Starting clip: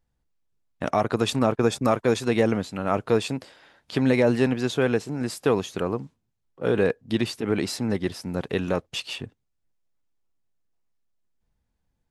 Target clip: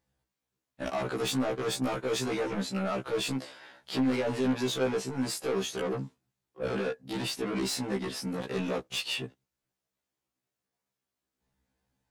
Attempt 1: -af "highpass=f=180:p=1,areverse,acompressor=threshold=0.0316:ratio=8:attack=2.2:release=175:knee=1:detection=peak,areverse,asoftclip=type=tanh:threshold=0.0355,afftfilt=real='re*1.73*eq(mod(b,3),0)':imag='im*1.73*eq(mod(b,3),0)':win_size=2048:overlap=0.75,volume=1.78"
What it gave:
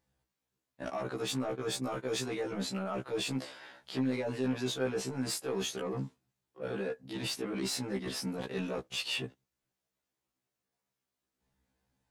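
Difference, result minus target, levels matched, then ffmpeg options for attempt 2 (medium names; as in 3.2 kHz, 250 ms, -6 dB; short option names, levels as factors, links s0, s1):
compression: peak gain reduction +9.5 dB
-af "highpass=f=180:p=1,areverse,acompressor=threshold=0.112:ratio=8:attack=2.2:release=175:knee=1:detection=peak,areverse,asoftclip=type=tanh:threshold=0.0355,afftfilt=real='re*1.73*eq(mod(b,3),0)':imag='im*1.73*eq(mod(b,3),0)':win_size=2048:overlap=0.75,volume=1.78"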